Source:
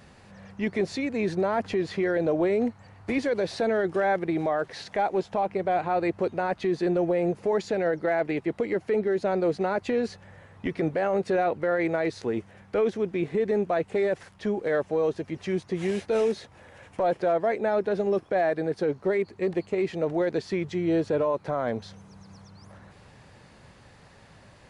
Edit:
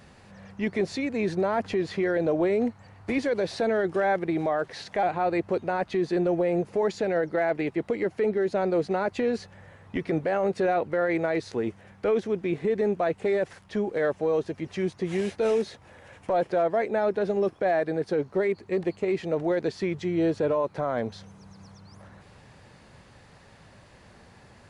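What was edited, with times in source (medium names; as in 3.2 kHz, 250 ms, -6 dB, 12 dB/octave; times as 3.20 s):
5.03–5.73 s: delete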